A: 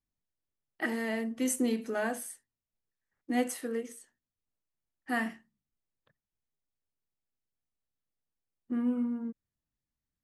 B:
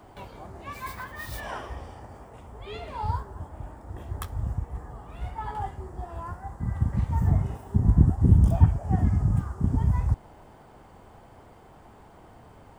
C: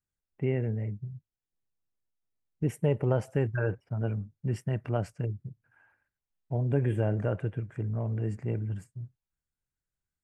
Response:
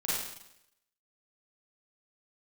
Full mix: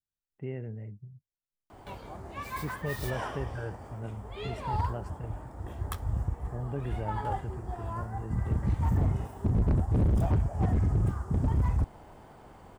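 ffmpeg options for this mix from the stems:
-filter_complex "[1:a]adelay=1700,volume=0.944[s0];[2:a]bandreject=f=2300:w=12,volume=0.376[s1];[s0][s1]amix=inputs=2:normalize=0,asoftclip=type=hard:threshold=0.0841"

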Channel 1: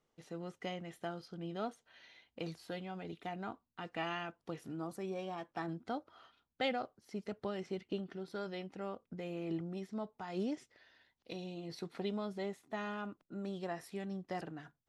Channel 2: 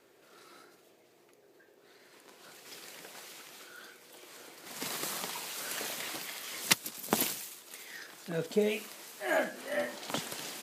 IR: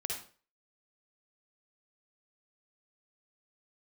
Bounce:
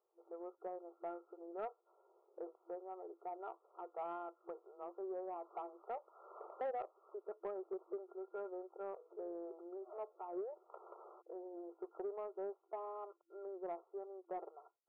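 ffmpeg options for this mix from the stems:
-filter_complex "[0:a]equalizer=f=1200:w=7.4:g=-7,volume=0.891,asplit=2[s0][s1];[1:a]adelay=600,volume=0.398[s2];[s1]apad=whole_len=494902[s3];[s2][s3]sidechaincompress=threshold=0.00126:ratio=12:attack=8.7:release=224[s4];[s0][s4]amix=inputs=2:normalize=0,afftfilt=real='re*between(b*sr/4096,340,1400)':imag='im*between(b*sr/4096,340,1400)':win_size=4096:overlap=0.75,asoftclip=type=tanh:threshold=0.0211"

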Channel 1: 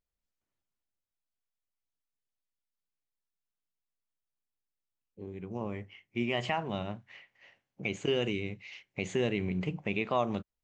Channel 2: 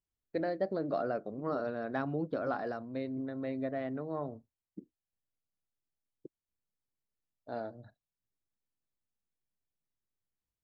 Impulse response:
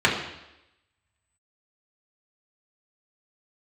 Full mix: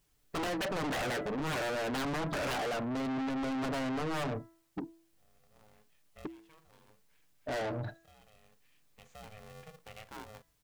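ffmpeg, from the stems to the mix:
-filter_complex "[0:a]aeval=exprs='val(0)*sgn(sin(2*PI*320*n/s))':c=same,volume=0.133[s0];[1:a]aecho=1:1:6.8:0.45,aeval=exprs='0.106*sin(PI/2*5.01*val(0)/0.106)':c=same,volume=1.06,asplit=2[s1][s2];[s2]apad=whole_len=469081[s3];[s0][s3]sidechaincompress=threshold=0.00794:ratio=10:attack=20:release=1420[s4];[s4][s1]amix=inputs=2:normalize=0,bandreject=f=330.8:t=h:w=4,bandreject=f=661.6:t=h:w=4,bandreject=f=992.4:t=h:w=4,bandreject=f=1323.2:t=h:w=4,bandreject=f=1654:t=h:w=4,bandreject=f=1984.8:t=h:w=4,asoftclip=type=tanh:threshold=0.0224"

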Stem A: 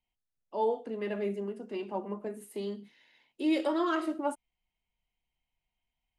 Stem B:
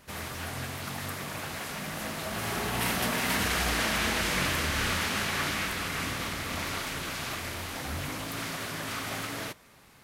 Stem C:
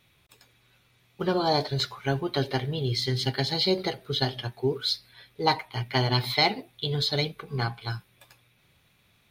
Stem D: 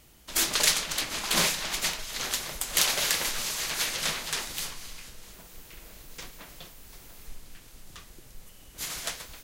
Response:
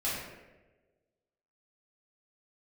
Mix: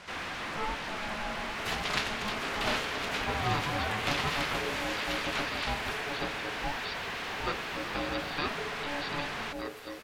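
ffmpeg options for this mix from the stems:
-filter_complex "[0:a]volume=0.668[s0];[1:a]lowpass=6300,asplit=2[s1][s2];[s2]highpass=f=720:p=1,volume=28.2,asoftclip=type=tanh:threshold=0.133[s3];[s1][s3]amix=inputs=2:normalize=0,lowpass=f=4800:p=1,volume=0.501,volume=0.398[s4];[2:a]adelay=2000,volume=0.422[s5];[3:a]adelay=1300,volume=0.944[s6];[s0][s4][s5][s6]amix=inputs=4:normalize=0,acrossover=split=3700[s7][s8];[s8]acompressor=threshold=0.00447:ratio=4:attack=1:release=60[s9];[s7][s9]amix=inputs=2:normalize=0,aeval=exprs='val(0)*sin(2*PI*430*n/s)':c=same"

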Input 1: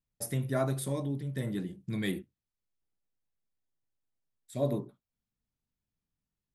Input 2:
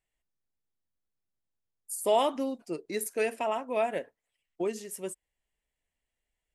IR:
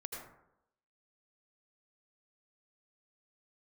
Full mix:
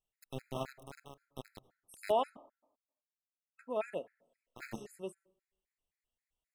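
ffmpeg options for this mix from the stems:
-filter_complex "[0:a]aeval=exprs='0.141*(cos(1*acos(clip(val(0)/0.141,-1,1)))-cos(1*PI/2))+0.00282*(cos(6*acos(clip(val(0)/0.141,-1,1)))-cos(6*PI/2))+0.0355*(cos(7*acos(clip(val(0)/0.141,-1,1)))-cos(7*PI/2))':c=same,aeval=exprs='val(0)*gte(abs(val(0)),0.0237)':c=same,volume=0.335,asplit=2[s0][s1];[s1]volume=0.211[s2];[1:a]acrossover=split=2900[s3][s4];[s4]acompressor=threshold=0.00355:ratio=4:attack=1:release=60[s5];[s3][s5]amix=inputs=2:normalize=0,volume=0.531,asplit=3[s6][s7][s8];[s6]atrim=end=2.37,asetpts=PTS-STARTPTS,afade=t=out:st=2.366:d=0.004:c=hsin[s9];[s7]atrim=start=2.37:end=3.59,asetpts=PTS-STARTPTS,volume=0[s10];[s8]atrim=start=3.59,asetpts=PTS-STARTPTS,afade=t=in:d=0.004:c=hsin[s11];[s9][s10][s11]concat=n=3:v=0:a=1,asplit=2[s12][s13];[s13]volume=0.0944[s14];[2:a]atrim=start_sample=2205[s15];[s2][s14]amix=inputs=2:normalize=0[s16];[s16][s15]afir=irnorm=-1:irlink=0[s17];[s0][s12][s17]amix=inputs=3:normalize=0,afftfilt=real='re*gt(sin(2*PI*3.8*pts/sr)*(1-2*mod(floor(b*sr/1024/1300),2)),0)':imag='im*gt(sin(2*PI*3.8*pts/sr)*(1-2*mod(floor(b*sr/1024/1300),2)),0)':win_size=1024:overlap=0.75"

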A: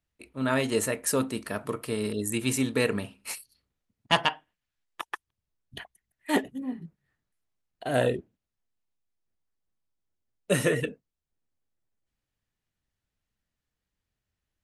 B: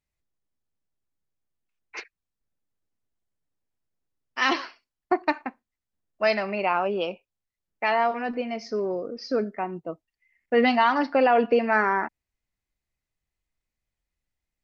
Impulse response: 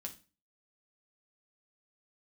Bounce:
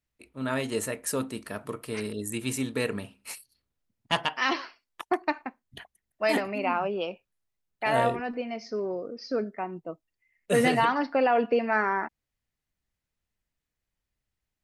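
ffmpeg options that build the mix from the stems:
-filter_complex "[0:a]volume=0.668[s0];[1:a]volume=0.668[s1];[s0][s1]amix=inputs=2:normalize=0"

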